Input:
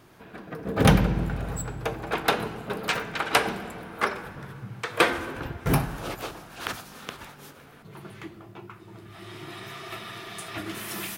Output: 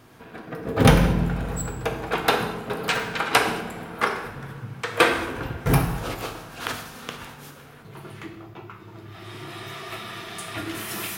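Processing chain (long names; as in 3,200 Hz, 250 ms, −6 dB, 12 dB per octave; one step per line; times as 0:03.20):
0:08.26–0:09.25: parametric band 9,100 Hz −8 dB 0.44 octaves
reverb whose tail is shaped and stops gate 260 ms falling, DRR 5 dB
level +2 dB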